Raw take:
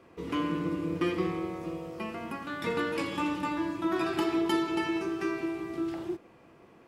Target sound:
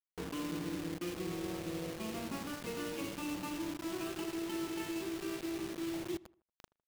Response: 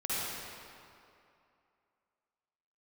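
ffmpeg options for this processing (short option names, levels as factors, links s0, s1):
-filter_complex "[0:a]adynamicsmooth=sensitivity=1.5:basefreq=1000,equalizer=f=2800:t=o:w=0.34:g=13.5,areverse,acompressor=threshold=0.00891:ratio=12,areverse,acrusher=bits=7:mix=0:aa=0.000001,asplit=2[s0][s1];[s1]adelay=78,lowpass=f=2300:p=1,volume=0.0841,asplit=2[s2][s3];[s3]adelay=78,lowpass=f=2300:p=1,volume=0.39,asplit=2[s4][s5];[s5]adelay=78,lowpass=f=2300:p=1,volume=0.39[s6];[s2][s4][s6]amix=inputs=3:normalize=0[s7];[s0][s7]amix=inputs=2:normalize=0,adynamicequalizer=threshold=0.00126:dfrequency=1100:dqfactor=0.82:tfrequency=1100:tqfactor=0.82:attack=5:release=100:ratio=0.375:range=2:mode=cutabove:tftype=bell,volume=1.78"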